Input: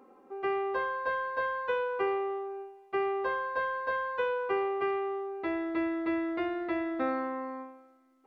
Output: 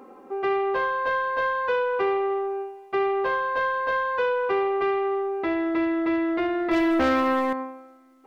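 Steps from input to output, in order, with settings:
in parallel at 0 dB: brickwall limiter −31 dBFS, peak gain reduction 11 dB
0:06.71–0:07.53: on the sum: leveller curve on the samples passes 2
soft clipping −20.5 dBFS, distortion −21 dB
level +4.5 dB

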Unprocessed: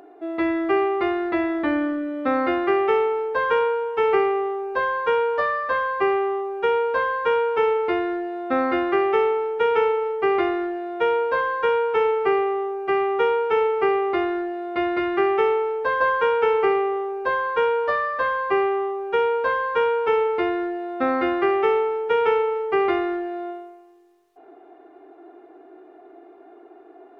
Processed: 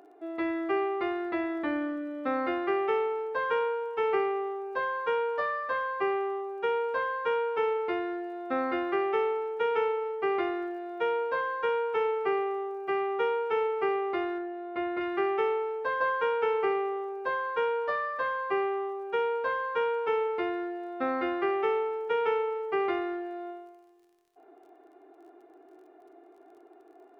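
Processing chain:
low-shelf EQ 100 Hz −8.5 dB
surface crackle 34 per second −48 dBFS
0:14.38–0:15.01: high-frequency loss of the air 210 metres
level −7.5 dB

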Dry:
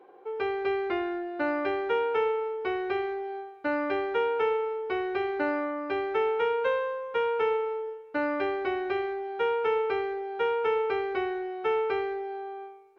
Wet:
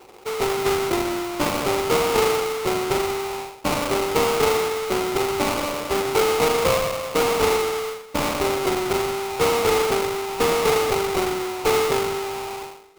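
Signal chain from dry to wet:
sample-rate reduction 1,700 Hz, jitter 20%
hum removal 294.5 Hz, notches 2
level +7 dB

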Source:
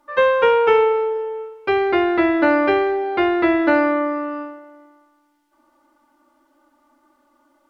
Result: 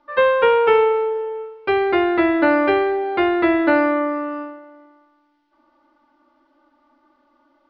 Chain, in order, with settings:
Butterworth low-pass 5,000 Hz 36 dB per octave

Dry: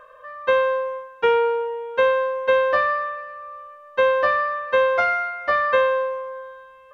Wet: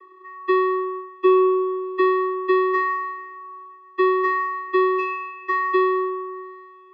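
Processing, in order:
channel vocoder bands 16, square 373 Hz

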